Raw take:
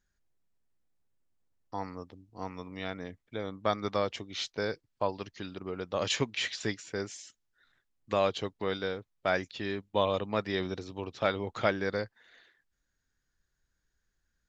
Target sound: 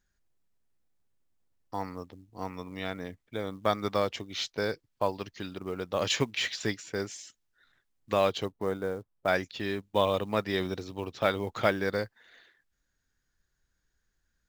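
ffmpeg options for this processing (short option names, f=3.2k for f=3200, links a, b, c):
-filter_complex "[0:a]asettb=1/sr,asplit=3[a][b][c];[a]atrim=end=8.454[d];[b]atrim=start=8.45:end=9.28,asetpts=PTS-STARTPTS,afade=t=in:d=0.004:c=qsin,afade=t=out:st=0.826:d=0.004:c=qsin,lowpass=1.2k[e];[c]atrim=start=9.276[f];[d][e]acrossfade=d=0.004:c1=hsin:c2=qsin[g];[g][f]acrossfade=d=0.004:c1=qsin:c2=hsin,acrusher=bits=7:mode=log:mix=0:aa=0.000001,volume=2dB"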